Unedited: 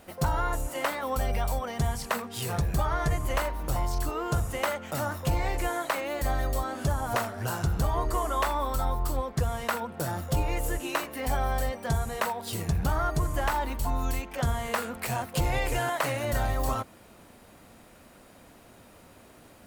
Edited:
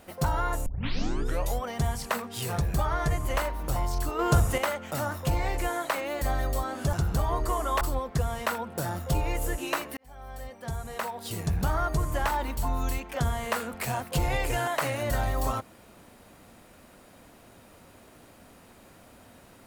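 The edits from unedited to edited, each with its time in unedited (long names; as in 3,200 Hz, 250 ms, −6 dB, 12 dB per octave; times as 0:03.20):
0:00.66: tape start 0.97 s
0:04.19–0:04.58: clip gain +6 dB
0:06.93–0:07.58: remove
0:08.46–0:09.03: remove
0:11.19–0:12.83: fade in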